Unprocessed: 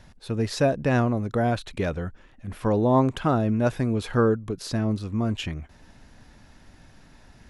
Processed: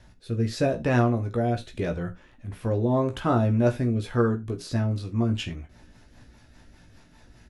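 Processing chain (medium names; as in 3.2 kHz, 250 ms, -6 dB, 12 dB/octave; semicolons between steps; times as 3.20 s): doubling 17 ms -5.5 dB; rotary cabinet horn 0.8 Hz, later 5 Hz, at 3.84 s; gated-style reverb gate 110 ms falling, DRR 8.5 dB; trim -1 dB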